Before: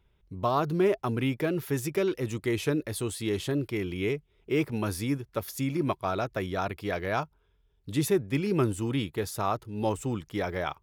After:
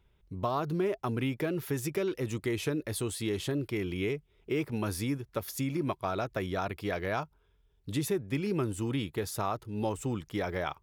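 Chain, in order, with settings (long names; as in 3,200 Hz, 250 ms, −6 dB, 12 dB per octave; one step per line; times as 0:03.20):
downward compressor 2.5 to 1, threshold −29 dBFS, peak gain reduction 6.5 dB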